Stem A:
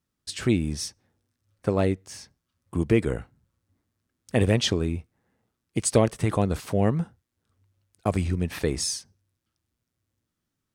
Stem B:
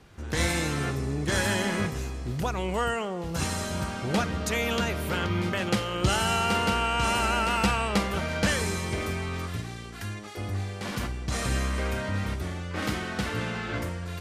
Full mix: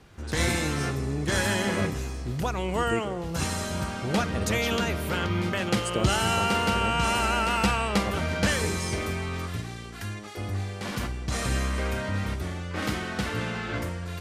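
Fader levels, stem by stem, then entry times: -10.5 dB, +0.5 dB; 0.00 s, 0.00 s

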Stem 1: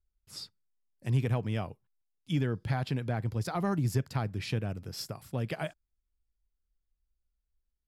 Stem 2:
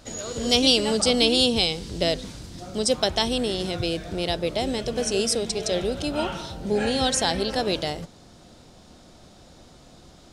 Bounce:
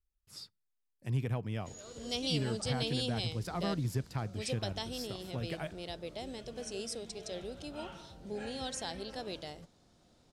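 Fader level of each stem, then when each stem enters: -5.0 dB, -16.5 dB; 0.00 s, 1.60 s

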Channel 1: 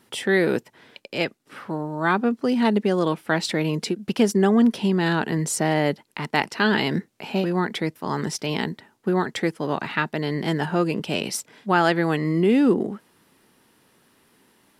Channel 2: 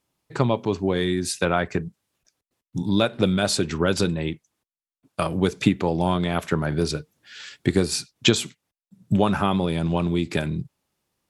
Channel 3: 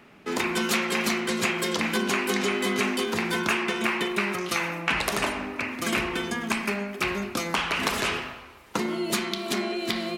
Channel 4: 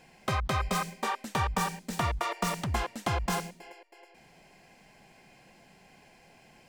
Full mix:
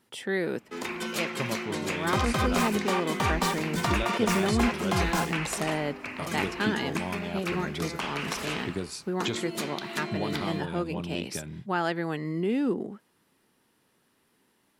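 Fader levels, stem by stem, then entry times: -9.0 dB, -13.0 dB, -7.5 dB, +1.5 dB; 0.00 s, 1.00 s, 0.45 s, 1.85 s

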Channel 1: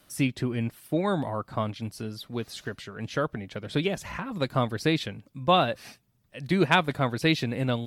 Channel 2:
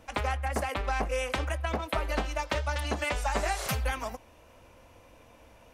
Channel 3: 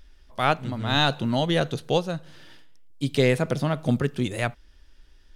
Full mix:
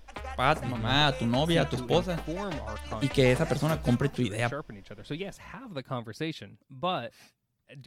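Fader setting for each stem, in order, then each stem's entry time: -9.0 dB, -9.0 dB, -2.5 dB; 1.35 s, 0.00 s, 0.00 s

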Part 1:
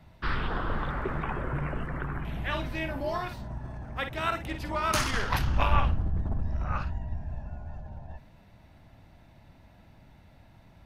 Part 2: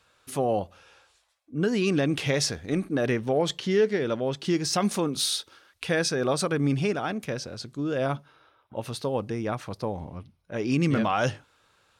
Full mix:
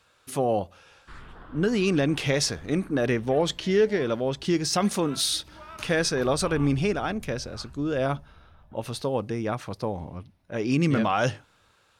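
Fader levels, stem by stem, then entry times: -15.5 dB, +1.0 dB; 0.85 s, 0.00 s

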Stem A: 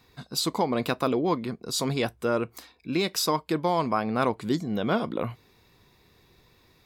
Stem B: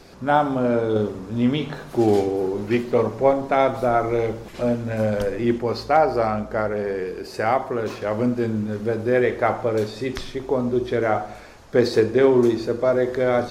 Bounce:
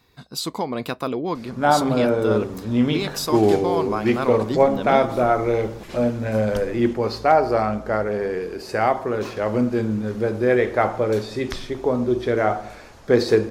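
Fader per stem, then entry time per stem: -0.5 dB, +1.0 dB; 0.00 s, 1.35 s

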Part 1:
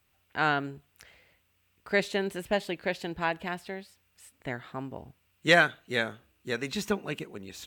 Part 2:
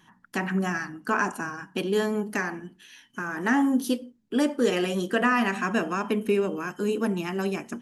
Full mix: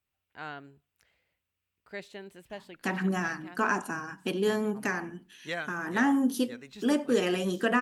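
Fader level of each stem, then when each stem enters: -14.5 dB, -2.5 dB; 0.00 s, 2.50 s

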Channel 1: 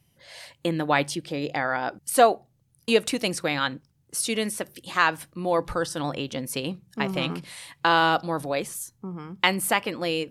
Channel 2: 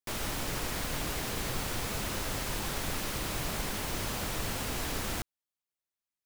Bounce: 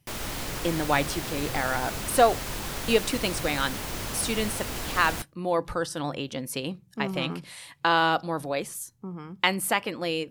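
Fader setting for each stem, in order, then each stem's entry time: -2.0 dB, +1.0 dB; 0.00 s, 0.00 s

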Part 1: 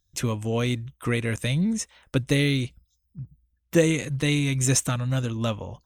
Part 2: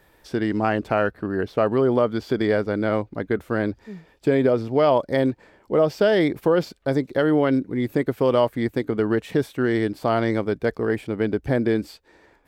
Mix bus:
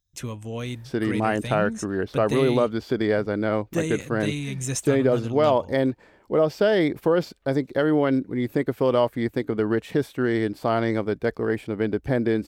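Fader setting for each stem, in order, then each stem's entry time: -6.5 dB, -1.5 dB; 0.00 s, 0.60 s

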